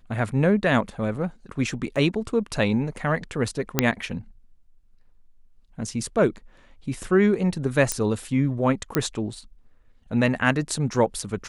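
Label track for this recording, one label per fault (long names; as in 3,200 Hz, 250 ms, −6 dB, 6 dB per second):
1.960000	1.960000	drop-out 3.2 ms
3.790000	3.790000	click −1 dBFS
7.920000	7.920000	click −8 dBFS
8.950000	8.950000	click −6 dBFS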